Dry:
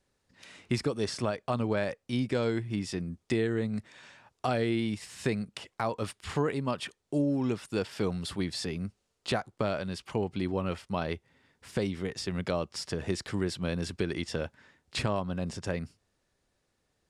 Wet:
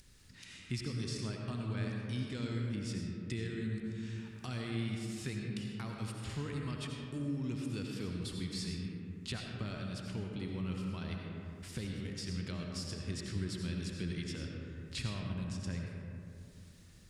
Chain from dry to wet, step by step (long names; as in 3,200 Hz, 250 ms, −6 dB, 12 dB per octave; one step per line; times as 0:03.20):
guitar amp tone stack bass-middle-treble 6-0-2
upward compression, threshold −53 dBFS
convolution reverb RT60 2.8 s, pre-delay 45 ms, DRR 0 dB
level +8.5 dB